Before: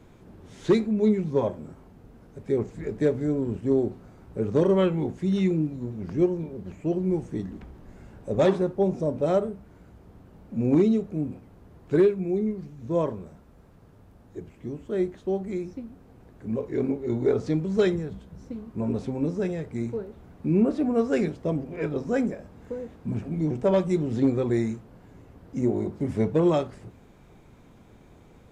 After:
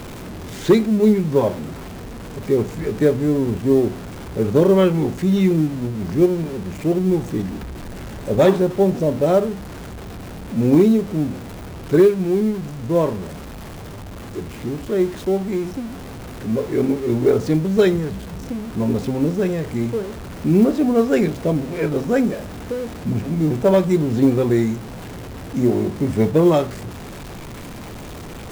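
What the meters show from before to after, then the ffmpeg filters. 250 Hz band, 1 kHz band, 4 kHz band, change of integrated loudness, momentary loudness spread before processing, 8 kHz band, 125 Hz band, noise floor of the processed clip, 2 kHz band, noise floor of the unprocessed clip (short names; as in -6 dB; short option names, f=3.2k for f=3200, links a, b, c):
+7.5 dB, +8.0 dB, +10.0 dB, +7.0 dB, 16 LU, n/a, +7.5 dB, -34 dBFS, +8.5 dB, -53 dBFS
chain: -af "aeval=exprs='val(0)+0.5*0.015*sgn(val(0))':c=same,acrusher=bits=8:mode=log:mix=0:aa=0.000001,volume=6.5dB"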